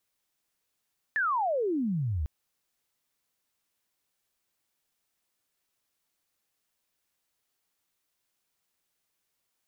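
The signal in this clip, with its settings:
glide logarithmic 1,800 Hz → 68 Hz −24 dBFS → −27 dBFS 1.10 s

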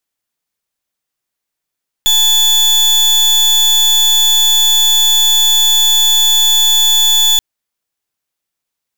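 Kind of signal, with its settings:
pulse wave 3,460 Hz, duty 34% −10 dBFS 5.33 s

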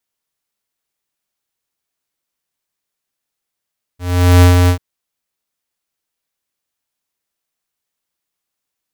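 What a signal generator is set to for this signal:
note with an ADSR envelope square 89.1 Hz, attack 429 ms, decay 124 ms, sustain −4 dB, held 0.70 s, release 91 ms −5.5 dBFS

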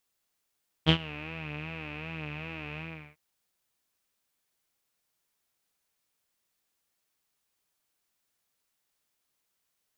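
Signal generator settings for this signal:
subtractive patch with vibrato D#3, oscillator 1 saw, sub −14.5 dB, filter lowpass, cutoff 2,300 Hz, Q 10, filter envelope 0.5 octaves, filter sustain 30%, attack 33 ms, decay 0.08 s, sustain −20 dB, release 0.38 s, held 1.92 s, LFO 2.6 Hz, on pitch 85 cents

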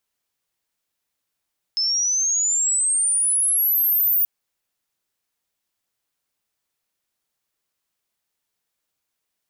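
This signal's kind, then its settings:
glide logarithmic 5,200 Hz → 15,000 Hz −18.5 dBFS → −15.5 dBFS 2.48 s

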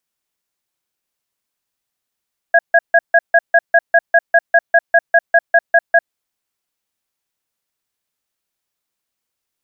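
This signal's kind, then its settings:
tone pair in a cadence 676 Hz, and 1,650 Hz, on 0.05 s, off 0.15 s, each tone −9 dBFS 3.49 s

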